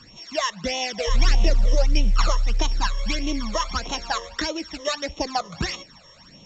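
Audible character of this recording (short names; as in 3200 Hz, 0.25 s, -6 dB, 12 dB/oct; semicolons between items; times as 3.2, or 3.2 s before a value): a buzz of ramps at a fixed pitch in blocks of 8 samples; phasing stages 12, 1.6 Hz, lowest notch 240–1600 Hz; µ-law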